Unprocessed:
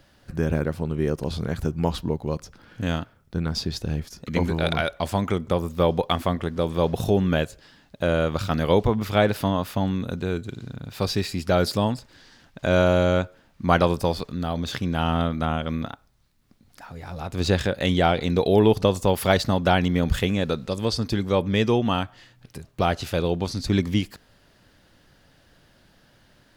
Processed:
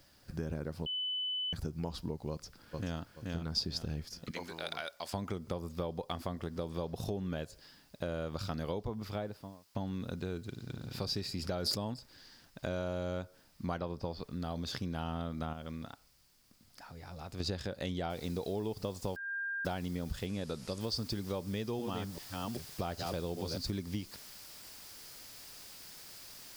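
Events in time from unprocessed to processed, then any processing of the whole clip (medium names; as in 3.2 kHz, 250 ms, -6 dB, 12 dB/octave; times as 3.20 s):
0.86–1.53 s: bleep 3 kHz -20.5 dBFS
2.30–3.00 s: echo throw 430 ms, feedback 25%, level -4.5 dB
4.31–5.14 s: high-pass 1.2 kHz 6 dB/octave
8.72–9.75 s: studio fade out
10.48–10.88 s: echo throw 210 ms, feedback 45%, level -2.5 dB
11.39–11.94 s: decay stretcher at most 35 dB/s
13.78–14.42 s: distance through air 180 m
15.53–17.40 s: compression 1.5:1, threshold -40 dBFS
18.10 s: noise floor step -62 dB -44 dB
19.16–19.65 s: bleep 1.6 kHz -22.5 dBFS
20.26–20.81 s: low-pass 11 kHz 24 dB/octave
21.40–23.58 s: chunks repeated in reverse 391 ms, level -5.5 dB
whole clip: dynamic bell 2.3 kHz, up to -4 dB, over -38 dBFS, Q 0.9; compression, threshold -25 dBFS; peaking EQ 4.9 kHz +9 dB 0.36 oct; trim -8.5 dB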